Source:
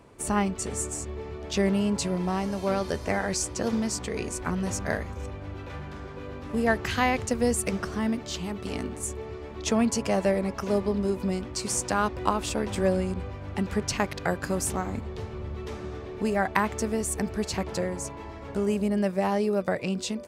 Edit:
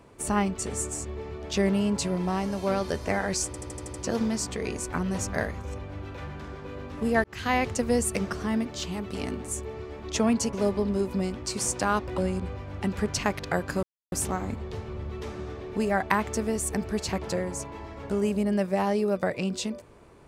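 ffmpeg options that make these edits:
-filter_complex "[0:a]asplit=11[s0][s1][s2][s3][s4][s5][s6][s7][s8][s9][s10];[s0]atrim=end=3.542[s11];[s1]atrim=start=3.458:end=3.542[s12];[s2]atrim=start=3.458:end=3.542[s13];[s3]atrim=start=3.458:end=3.542[s14];[s4]atrim=start=3.458:end=3.542[s15];[s5]atrim=start=3.458:end=3.542[s16];[s6]atrim=start=3.458:end=6.76,asetpts=PTS-STARTPTS,afade=t=out:st=3.298:d=0.004:c=hsin[s17];[s7]atrim=start=6.76:end=10.052,asetpts=PTS-STARTPTS,afade=t=in:d=0.33[s18];[s8]atrim=start=10.618:end=12.272[s19];[s9]atrim=start=12.918:end=14.57,asetpts=PTS-STARTPTS,afade=t=out:st=1.648:d=0.004:c=hsin,apad=pad_dur=0.29[s20];[s10]atrim=start=14.57,asetpts=PTS-STARTPTS,afade=t=in:d=0.004:c=hsin[s21];[s11][s12]acrossfade=d=0.004:c1=hsin:c2=hsin[s22];[s22][s13]acrossfade=d=0.004:c1=hsin:c2=hsin[s23];[s23][s14]acrossfade=d=0.004:c1=hsin:c2=hsin[s24];[s24][s15]acrossfade=d=0.004:c1=hsin:c2=hsin[s25];[s25][s16]acrossfade=d=0.004:c1=hsin:c2=hsin[s26];[s17][s18]concat=n=2:v=0:a=1[s27];[s26][s27]acrossfade=d=0.004:c1=hsin:c2=hsin[s28];[s28][s19]acrossfade=d=0.004:c1=hsin:c2=hsin[s29];[s20][s21]concat=n=2:v=0:a=1[s30];[s29][s30]acrossfade=d=0.004:c1=hsin:c2=hsin"

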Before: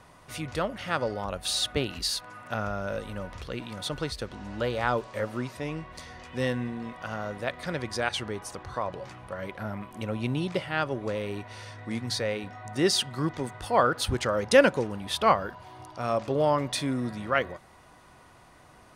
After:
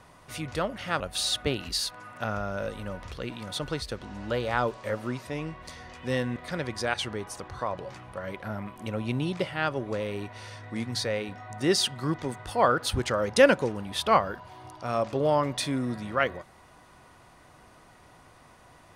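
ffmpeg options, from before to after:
-filter_complex "[0:a]asplit=3[s0][s1][s2];[s0]atrim=end=1.002[s3];[s1]atrim=start=1.298:end=6.662[s4];[s2]atrim=start=7.508[s5];[s3][s4]acrossfade=d=0.004:c1=hsin:c2=hsin[s6];[s6][s5]acrossfade=d=0.004:c1=hsin:c2=hsin"

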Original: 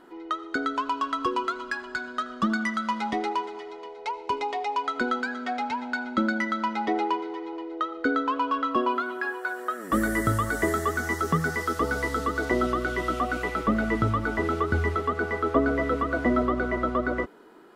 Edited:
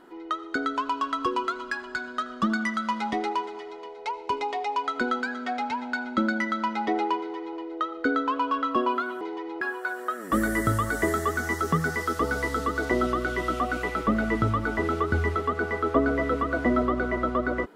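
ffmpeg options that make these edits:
-filter_complex "[0:a]asplit=3[s0][s1][s2];[s0]atrim=end=9.212[s3];[s1]atrim=start=7.178:end=7.582[s4];[s2]atrim=start=9.208[s5];[s3][s4]acrossfade=d=0.004:c1=hsin:c2=hsin[s6];[s6][s5]acrossfade=d=0.004:c1=hsin:c2=hsin"

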